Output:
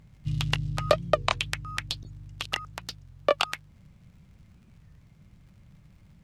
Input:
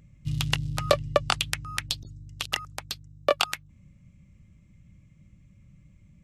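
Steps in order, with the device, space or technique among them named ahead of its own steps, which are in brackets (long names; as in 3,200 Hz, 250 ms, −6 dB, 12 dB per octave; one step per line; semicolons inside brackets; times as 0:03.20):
warped LP (wow of a warped record 33 1/3 rpm, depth 250 cents; surface crackle 91 per second −50 dBFS; pink noise bed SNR 37 dB)
0:00.97–0:01.46: mains-hum notches 60/120/180/240/300/360/420/480 Hz
high-shelf EQ 6,700 Hz −11 dB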